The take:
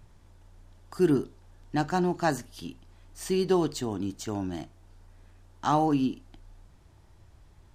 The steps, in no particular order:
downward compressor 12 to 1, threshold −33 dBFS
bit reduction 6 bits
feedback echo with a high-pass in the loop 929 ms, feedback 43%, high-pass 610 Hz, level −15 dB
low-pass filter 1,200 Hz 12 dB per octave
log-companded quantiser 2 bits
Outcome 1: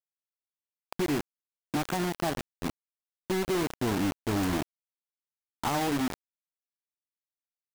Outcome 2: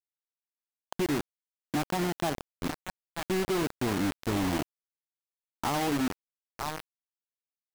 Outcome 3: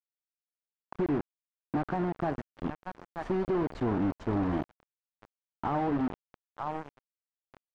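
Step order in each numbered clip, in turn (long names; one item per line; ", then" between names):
low-pass filter, then bit reduction, then downward compressor, then feedback echo with a high-pass in the loop, then log-companded quantiser
feedback echo with a high-pass in the loop, then bit reduction, then downward compressor, then low-pass filter, then log-companded quantiser
bit reduction, then feedback echo with a high-pass in the loop, then downward compressor, then log-companded quantiser, then low-pass filter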